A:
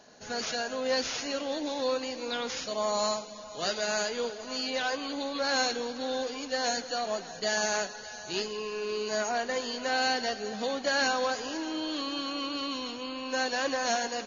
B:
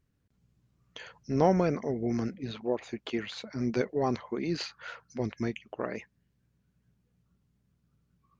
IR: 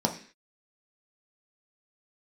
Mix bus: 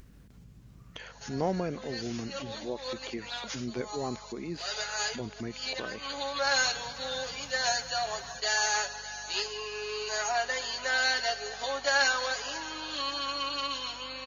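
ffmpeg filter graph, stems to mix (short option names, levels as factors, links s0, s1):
-filter_complex "[0:a]highpass=730,aecho=1:1:7.2:0.7,adelay=1000,volume=1.12[s0];[1:a]acompressor=mode=upward:threshold=0.0316:ratio=2.5,volume=0.501,asplit=2[s1][s2];[s2]apad=whole_len=673353[s3];[s0][s3]sidechaincompress=threshold=0.00447:ratio=8:attack=11:release=145[s4];[s4][s1]amix=inputs=2:normalize=0,aeval=exprs='val(0)+0.00158*(sin(2*PI*50*n/s)+sin(2*PI*2*50*n/s)/2+sin(2*PI*3*50*n/s)/3+sin(2*PI*4*50*n/s)/4+sin(2*PI*5*50*n/s)/5)':c=same"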